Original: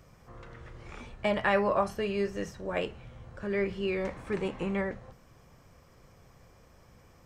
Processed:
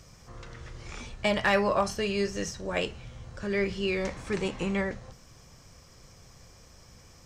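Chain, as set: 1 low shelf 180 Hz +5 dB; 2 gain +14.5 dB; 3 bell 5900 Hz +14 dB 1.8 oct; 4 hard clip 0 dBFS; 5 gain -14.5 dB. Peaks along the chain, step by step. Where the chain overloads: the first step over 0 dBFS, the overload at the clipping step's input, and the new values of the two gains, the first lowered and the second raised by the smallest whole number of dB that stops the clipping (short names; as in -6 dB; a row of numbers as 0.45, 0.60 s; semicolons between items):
-13.5, +1.0, +4.0, 0.0, -14.5 dBFS; step 2, 4.0 dB; step 2 +10.5 dB, step 5 -10.5 dB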